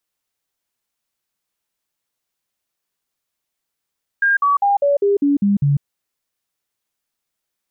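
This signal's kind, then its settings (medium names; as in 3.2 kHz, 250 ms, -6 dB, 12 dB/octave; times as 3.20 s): stepped sine 1.61 kHz down, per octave 2, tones 8, 0.15 s, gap 0.05 s -12 dBFS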